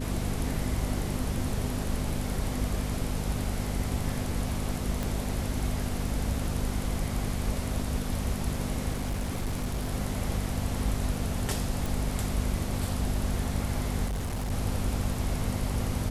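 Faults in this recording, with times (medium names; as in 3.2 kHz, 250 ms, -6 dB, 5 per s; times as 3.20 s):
hum 50 Hz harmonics 5 -34 dBFS
5.03 s: pop
8.93–9.92 s: clipped -26 dBFS
11.86 s: pop
14.06–14.52 s: clipped -28 dBFS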